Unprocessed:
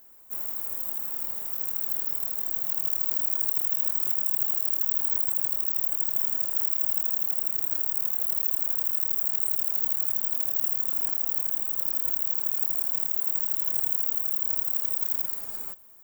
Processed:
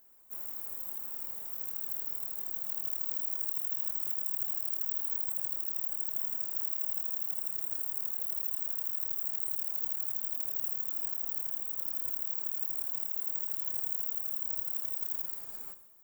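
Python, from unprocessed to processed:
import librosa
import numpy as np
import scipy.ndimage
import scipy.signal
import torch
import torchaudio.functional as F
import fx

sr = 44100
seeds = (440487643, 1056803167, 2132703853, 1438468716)

y = fx.peak_eq(x, sr, hz=9700.0, db=13.5, octaves=0.35, at=(7.35, 8.0))
y = fx.rev_gated(y, sr, seeds[0], gate_ms=190, shape='flat', drr_db=11.5)
y = F.gain(torch.from_numpy(y), -8.0).numpy()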